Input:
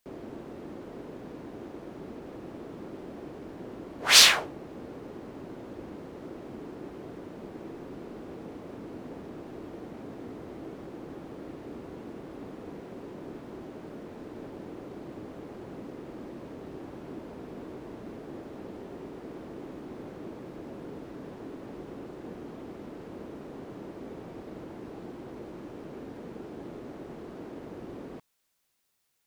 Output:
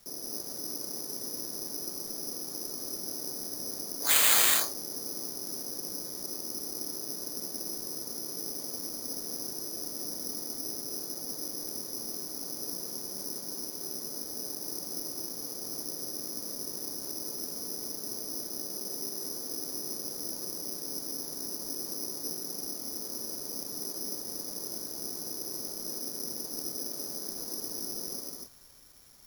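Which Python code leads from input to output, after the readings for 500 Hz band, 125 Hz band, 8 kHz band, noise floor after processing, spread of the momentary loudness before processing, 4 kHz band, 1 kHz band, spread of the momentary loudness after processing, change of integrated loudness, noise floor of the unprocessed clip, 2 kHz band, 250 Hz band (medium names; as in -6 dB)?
-4.0 dB, -7.5 dB, +3.5 dB, -41 dBFS, 1 LU, -6.0 dB, -4.0 dB, 1 LU, +0.5 dB, -46 dBFS, -6.5 dB, -4.5 dB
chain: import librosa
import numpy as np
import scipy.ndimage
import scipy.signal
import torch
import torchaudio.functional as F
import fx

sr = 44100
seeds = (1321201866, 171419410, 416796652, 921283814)

y = scipy.signal.sosfilt(scipy.signal.butter(2, 150.0, 'highpass', fs=sr, output='sos'), x)
y = fx.high_shelf(y, sr, hz=3800.0, db=-11.5)
y = fx.dmg_noise_colour(y, sr, seeds[0], colour='pink', level_db=-60.0)
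y = fx.rev_gated(y, sr, seeds[1], gate_ms=300, shape='rising', drr_db=0.0)
y = (np.kron(scipy.signal.resample_poly(y, 1, 8), np.eye(8)[0]) * 8)[:len(y)]
y = F.gain(torch.from_numpy(y), -6.5).numpy()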